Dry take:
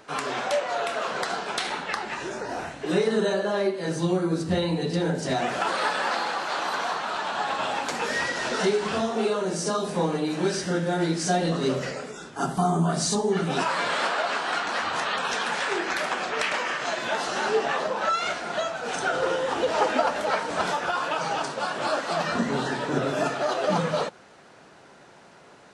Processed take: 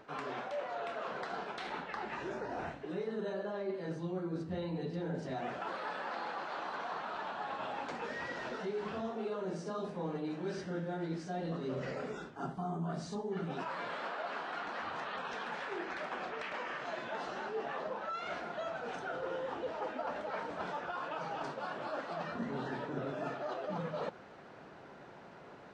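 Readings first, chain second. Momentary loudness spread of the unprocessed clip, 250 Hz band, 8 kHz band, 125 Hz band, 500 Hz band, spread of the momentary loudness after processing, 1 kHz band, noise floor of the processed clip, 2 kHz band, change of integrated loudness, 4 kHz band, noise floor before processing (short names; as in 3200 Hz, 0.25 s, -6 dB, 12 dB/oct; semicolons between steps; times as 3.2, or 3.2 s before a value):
5 LU, -12.5 dB, -26.0 dB, -12.0 dB, -12.5 dB, 2 LU, -13.0 dB, -53 dBFS, -14.0 dB, -13.5 dB, -18.5 dB, -51 dBFS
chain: reverse; compressor 6:1, threshold -35 dBFS, peak gain reduction 17 dB; reverse; tape spacing loss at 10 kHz 23 dB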